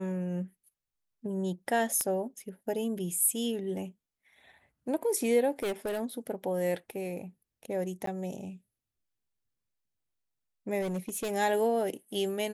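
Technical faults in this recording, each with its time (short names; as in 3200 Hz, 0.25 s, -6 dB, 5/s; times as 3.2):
2.01 pop -16 dBFS
5.59–6.01 clipped -28.5 dBFS
8.06–8.07 gap
10.81–11.31 clipped -29.5 dBFS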